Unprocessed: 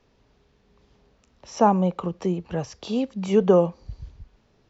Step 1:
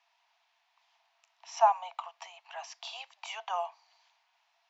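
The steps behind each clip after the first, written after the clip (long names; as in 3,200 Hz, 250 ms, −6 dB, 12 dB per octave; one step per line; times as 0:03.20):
Chebyshev high-pass with heavy ripple 660 Hz, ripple 6 dB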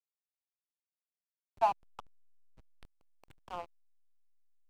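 slack as between gear wheels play −25.5 dBFS
level −4.5 dB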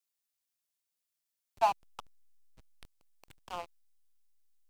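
high-shelf EQ 2,600 Hz +10.5 dB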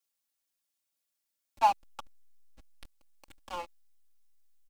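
comb filter 3.6 ms, depth 87%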